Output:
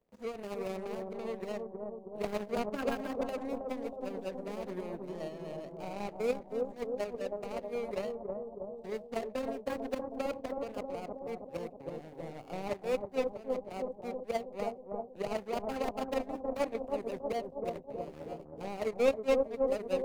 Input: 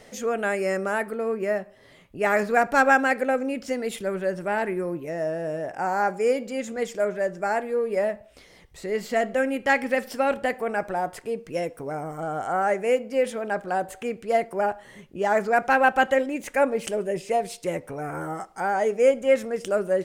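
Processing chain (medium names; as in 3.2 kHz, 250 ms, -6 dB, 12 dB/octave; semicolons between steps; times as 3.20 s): median filter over 41 samples; power-law waveshaper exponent 2; bucket-brigade echo 319 ms, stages 2048, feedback 58%, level -3.5 dB; three bands compressed up and down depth 40%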